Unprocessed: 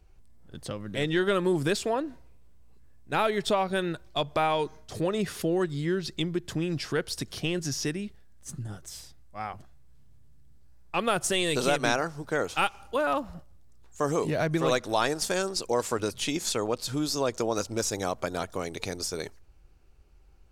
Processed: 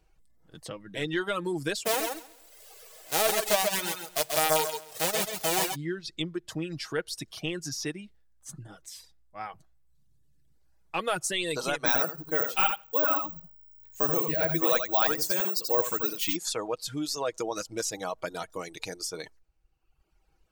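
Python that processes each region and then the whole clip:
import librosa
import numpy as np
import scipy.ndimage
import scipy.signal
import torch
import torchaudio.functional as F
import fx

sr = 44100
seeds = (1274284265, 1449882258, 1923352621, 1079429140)

y = fx.envelope_flatten(x, sr, power=0.1, at=(1.85, 5.74), fade=0.02)
y = fx.band_shelf(y, sr, hz=570.0, db=8.0, octaves=1.3, at=(1.85, 5.74), fade=0.02)
y = fx.echo_feedback(y, sr, ms=134, feedback_pct=32, wet_db=-3, at=(1.85, 5.74), fade=0.02)
y = fx.chain(y, sr, fx.resample_bad(factor=2, down='filtered', up='zero_stuff'),
    fx.echo_feedback(ms=83, feedback_pct=16, wet_db=-3.0), at=(11.86, 16.36))
y = y + 0.41 * np.pad(y, (int(6.3 * sr / 1000.0), 0))[:len(y)]
y = fx.dereverb_blind(y, sr, rt60_s=1.1)
y = fx.low_shelf(y, sr, hz=230.0, db=-8.0)
y = y * 10.0 ** (-2.0 / 20.0)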